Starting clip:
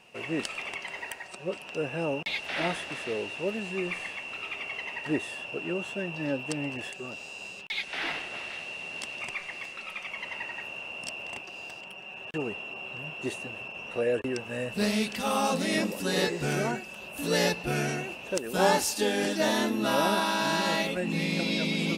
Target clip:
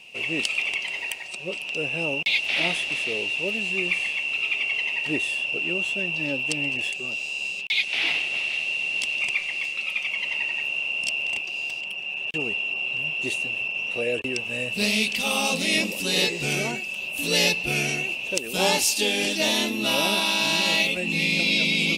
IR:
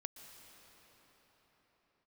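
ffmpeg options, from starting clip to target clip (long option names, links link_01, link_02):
-af "highshelf=frequency=2000:width_type=q:width=3:gain=7"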